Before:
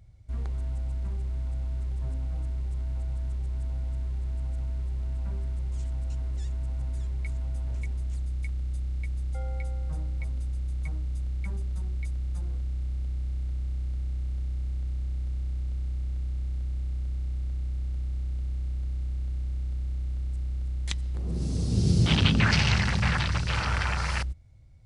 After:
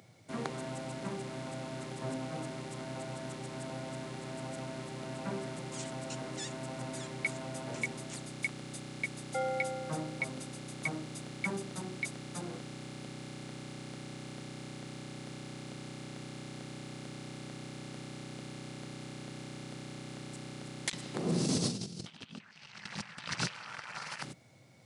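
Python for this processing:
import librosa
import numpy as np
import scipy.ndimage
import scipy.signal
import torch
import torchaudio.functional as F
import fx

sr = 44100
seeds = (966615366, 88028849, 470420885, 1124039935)

y = scipy.signal.sosfilt(scipy.signal.bessel(8, 250.0, 'highpass', norm='mag', fs=sr, output='sos'), x)
y = fx.dynamic_eq(y, sr, hz=370.0, q=0.77, threshold_db=-43.0, ratio=4.0, max_db=-6)
y = fx.over_compress(y, sr, threshold_db=-41.0, ratio=-0.5)
y = y * 10.0 ** (6.0 / 20.0)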